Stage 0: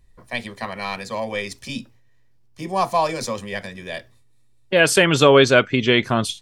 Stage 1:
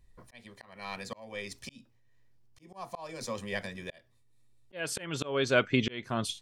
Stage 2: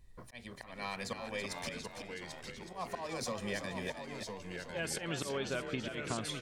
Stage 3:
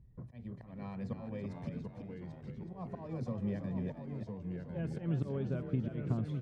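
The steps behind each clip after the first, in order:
auto swell 0.548 s; gain -6 dB
compressor 10:1, threshold -37 dBFS, peak gain reduction 18 dB; frequency-shifting echo 0.33 s, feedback 35%, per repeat +48 Hz, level -7.5 dB; echoes that change speed 0.605 s, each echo -2 st, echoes 2, each echo -6 dB; gain +2.5 dB
band-pass 130 Hz, Q 1.5; gain +11 dB

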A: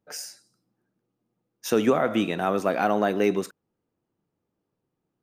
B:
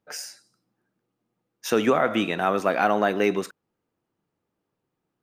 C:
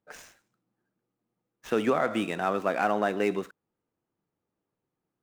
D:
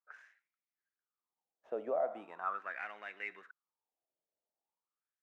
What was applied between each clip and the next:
bell 1800 Hz +6 dB 2.9 oct; gain -1.5 dB
median filter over 9 samples; gain -4.5 dB
wah 0.41 Hz 600–2200 Hz, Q 5.4; gain -1.5 dB

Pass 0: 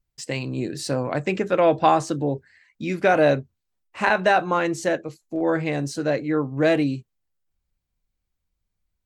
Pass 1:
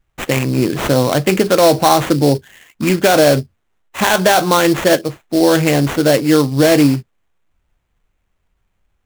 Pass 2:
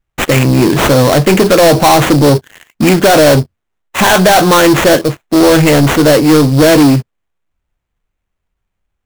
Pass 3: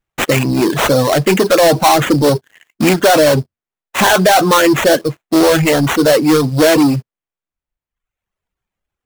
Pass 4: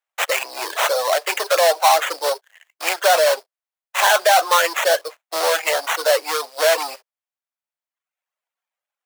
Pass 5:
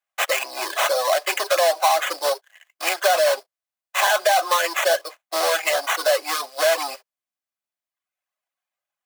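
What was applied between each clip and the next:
sample-rate reducer 4900 Hz, jitter 20%; maximiser +13 dB; gain -1 dB
sample leveller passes 3
reverb removal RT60 0.99 s; low shelf 100 Hz -10 dB; gain -1.5 dB
steep high-pass 550 Hz 36 dB/oct; gain -3.5 dB
compressor 4:1, threshold -15 dBFS, peak gain reduction 5 dB; notch comb 460 Hz; gain +1 dB

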